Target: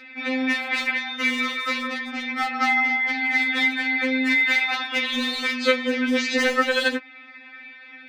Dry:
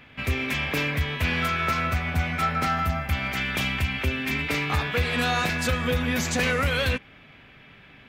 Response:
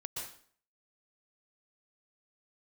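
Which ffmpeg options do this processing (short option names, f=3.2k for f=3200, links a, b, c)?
-filter_complex "[0:a]highpass=180,equalizer=f=260:t=q:w=4:g=-3,equalizer=f=910:t=q:w=4:g=-7,equalizer=f=1.9k:t=q:w=4:g=10,lowpass=f=4.8k:w=0.5412,lowpass=f=4.8k:w=1.3066,acrossover=split=760|2500[a][b][c];[c]acompressor=mode=upward:threshold=-51dB:ratio=2.5[d];[a][b][d]amix=inputs=3:normalize=0,highshelf=f=2.7k:g=5,asoftclip=type=hard:threshold=-15.5dB,afftfilt=real='re*3.46*eq(mod(b,12),0)':imag='im*3.46*eq(mod(b,12),0)':win_size=2048:overlap=0.75,volume=4.5dB"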